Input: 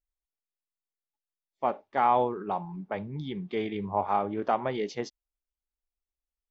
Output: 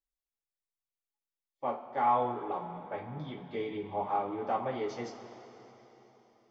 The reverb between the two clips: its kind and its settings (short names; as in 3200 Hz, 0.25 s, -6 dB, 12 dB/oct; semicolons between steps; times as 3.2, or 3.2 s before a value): two-slope reverb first 0.26 s, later 3.9 s, from -18 dB, DRR -5.5 dB; gain -12 dB